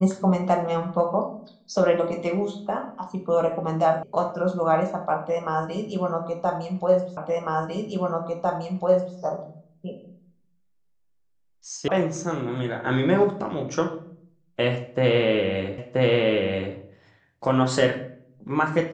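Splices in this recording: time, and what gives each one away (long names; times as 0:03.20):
0:04.03: cut off before it has died away
0:07.17: the same again, the last 2 s
0:11.88: cut off before it has died away
0:15.78: the same again, the last 0.98 s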